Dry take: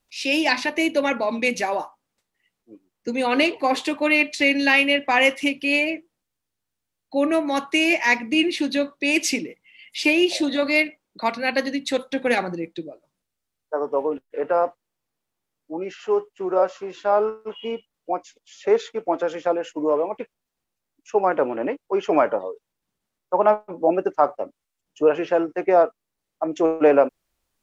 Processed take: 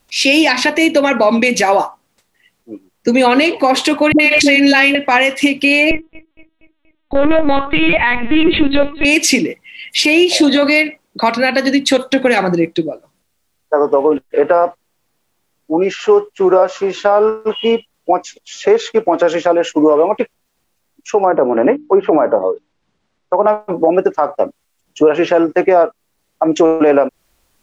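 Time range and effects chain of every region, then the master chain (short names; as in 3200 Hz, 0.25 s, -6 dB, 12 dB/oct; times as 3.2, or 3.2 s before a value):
4.12–4.95 dispersion highs, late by 75 ms, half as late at 390 Hz + backwards sustainer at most 27 dB/s
5.91–9.05 overloaded stage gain 18.5 dB + feedback echo 0.237 s, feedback 51%, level -20 dB + LPC vocoder at 8 kHz pitch kept
21.24–23.47 treble ducked by the level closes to 1100 Hz, closed at -18.5 dBFS + air absorption 110 m + notches 60/120/180/240/300 Hz
whole clip: compressor 6:1, threshold -21 dBFS; maximiser +16.5 dB; gain -1 dB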